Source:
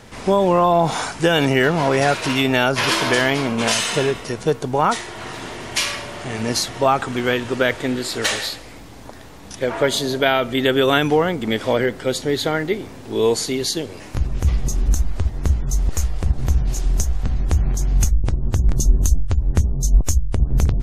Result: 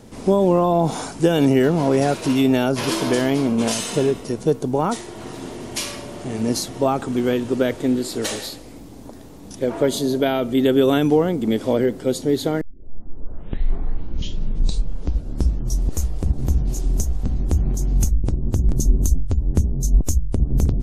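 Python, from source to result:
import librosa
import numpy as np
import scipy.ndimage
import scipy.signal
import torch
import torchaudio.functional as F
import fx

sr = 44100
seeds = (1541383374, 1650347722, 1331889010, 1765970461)

y = fx.edit(x, sr, fx.tape_start(start_s=12.61, length_s=3.38), tone=tone)
y = fx.curve_eq(y, sr, hz=(110.0, 270.0, 1800.0, 11000.0), db=(0, 6, -10, 1))
y = F.gain(torch.from_numpy(y), -1.5).numpy()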